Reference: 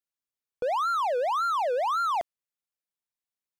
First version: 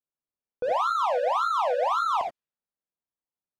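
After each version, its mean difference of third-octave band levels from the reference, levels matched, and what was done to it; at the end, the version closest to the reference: 4.5 dB: high shelf 9300 Hz -9.5 dB; non-linear reverb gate 0.1 s rising, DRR 2 dB; low-pass opened by the level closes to 1000 Hz, open at -25 dBFS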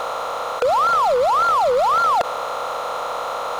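12.5 dB: per-bin compression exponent 0.2; hard clip -21 dBFS, distortion -13 dB; gain +8 dB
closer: first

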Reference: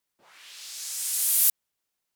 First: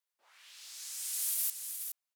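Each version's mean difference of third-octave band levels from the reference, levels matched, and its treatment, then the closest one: 1.5 dB: HPF 630 Hz 12 dB/oct; limiter -14 dBFS, peak gain reduction 5.5 dB; on a send: echo 0.419 s -7.5 dB; on the sum: gain -8.5 dB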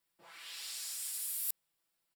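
6.0 dB: notch 6300 Hz, Q 5.7; comb 6 ms, depth 76%; reverse; compressor 4:1, threshold -36 dBFS, peak gain reduction 17 dB; reverse; gain -2 dB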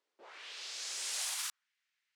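10.0 dB: limiter -15 dBFS, peak gain reduction 6.5 dB; high-pass sweep 410 Hz -> 1900 Hz, 1.05–1.7; air absorption 110 m; gain +2 dB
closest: first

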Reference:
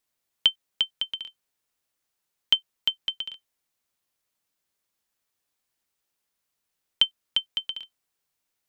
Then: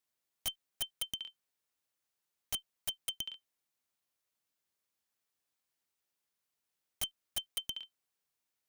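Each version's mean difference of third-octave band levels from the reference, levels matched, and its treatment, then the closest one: 9.0 dB: one diode to ground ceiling -12.5 dBFS; HPF 59 Hz 6 dB/oct; wrapped overs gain 22 dB; gain -6 dB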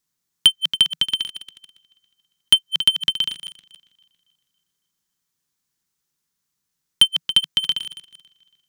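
5.5 dB: regenerating reverse delay 0.139 s, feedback 64%, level -13 dB; sample leveller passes 2; fifteen-band EQ 160 Hz +11 dB, 630 Hz -10 dB, 2500 Hz -4 dB, 6300 Hz +4 dB; gain +5.5 dB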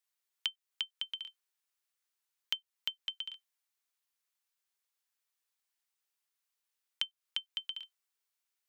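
4.0 dB: elliptic high-pass 380 Hz; bell 550 Hz -9.5 dB 1.4 oct; compressor 3:1, threshold -30 dBFS, peak gain reduction 10.5 dB; gain -4.5 dB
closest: third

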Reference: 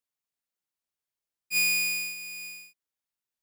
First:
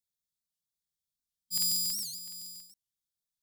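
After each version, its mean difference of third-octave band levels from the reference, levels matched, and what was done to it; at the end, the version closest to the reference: 7.0 dB: FFT band-reject 230–3200 Hz; low shelf 140 Hz +4.5 dB; crackling interface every 0.14 s, samples 2048, repeat, from 0.83; record warp 78 rpm, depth 250 cents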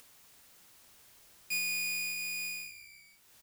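5.5 dB: octaver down 1 oct, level -3 dB; compressor 6:1, threshold -35 dBFS, peak gain reduction 12.5 dB; on a send: frequency-shifting echo 0.155 s, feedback 33%, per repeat -66 Hz, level -15 dB; on the sum: upward compressor, threshold -39 dBFS; gain +2.5 dB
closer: second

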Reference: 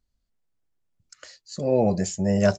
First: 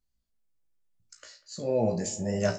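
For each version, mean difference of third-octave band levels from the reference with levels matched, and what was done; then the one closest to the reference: 3.0 dB: high shelf 5600 Hz +6 dB; flange 0.84 Hz, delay 9.7 ms, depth 9.7 ms, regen -68%; resonator 57 Hz, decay 0.22 s, harmonics all, mix 90%; on a send: analogue delay 97 ms, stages 2048, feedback 76%, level -18.5 dB; on the sum: gain +4 dB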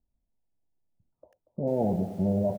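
7.5 dB: limiter -16 dBFS, peak gain reduction 8.5 dB; rippled Chebyshev low-pass 960 Hz, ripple 3 dB; feedback echo 0.236 s, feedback 30%, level -15 dB; lo-fi delay 92 ms, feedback 55%, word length 8-bit, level -12 dB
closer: first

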